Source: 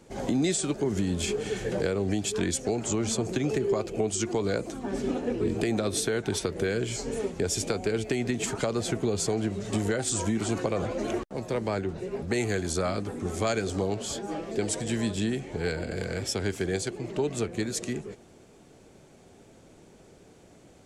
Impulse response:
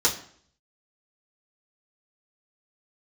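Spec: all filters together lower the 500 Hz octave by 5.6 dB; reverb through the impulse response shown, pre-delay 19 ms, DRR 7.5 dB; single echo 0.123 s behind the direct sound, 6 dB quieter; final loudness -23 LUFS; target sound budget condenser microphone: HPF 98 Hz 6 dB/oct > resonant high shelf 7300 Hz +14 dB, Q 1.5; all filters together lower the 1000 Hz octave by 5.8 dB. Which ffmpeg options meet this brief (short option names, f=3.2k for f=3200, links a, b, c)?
-filter_complex "[0:a]equalizer=f=500:t=o:g=-6,equalizer=f=1k:t=o:g=-5.5,aecho=1:1:123:0.501,asplit=2[a][b];[1:a]atrim=start_sample=2205,adelay=19[c];[b][c]afir=irnorm=-1:irlink=0,volume=-20dB[d];[a][d]amix=inputs=2:normalize=0,highpass=f=98:p=1,highshelf=f=7.3k:t=q:w=1.5:g=14,volume=3.5dB"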